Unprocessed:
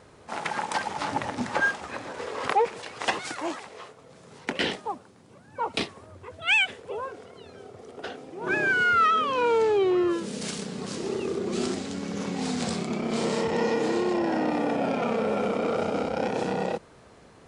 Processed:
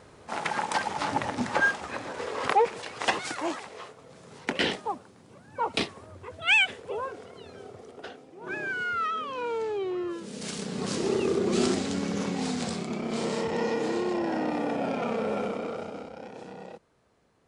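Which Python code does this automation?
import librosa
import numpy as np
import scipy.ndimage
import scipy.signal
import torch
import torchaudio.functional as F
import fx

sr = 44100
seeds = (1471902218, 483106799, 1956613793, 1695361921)

y = fx.gain(x, sr, db=fx.line((7.71, 0.5), (8.28, -8.5), (10.14, -8.5), (10.86, 3.5), (11.99, 3.5), (12.7, -3.0), (15.38, -3.0), (16.21, -15.0)))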